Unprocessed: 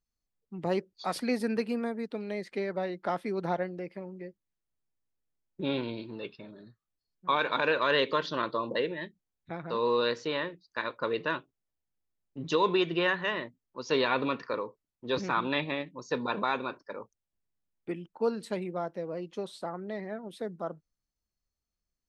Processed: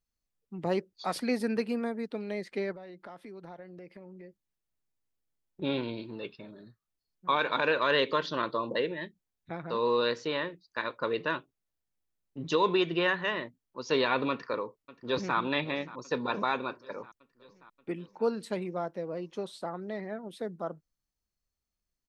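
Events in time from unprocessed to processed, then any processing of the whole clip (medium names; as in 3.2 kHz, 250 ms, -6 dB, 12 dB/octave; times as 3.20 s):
2.72–5.62 s: compression 4:1, threshold -45 dBFS
14.30–15.37 s: echo throw 580 ms, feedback 70%, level -18 dB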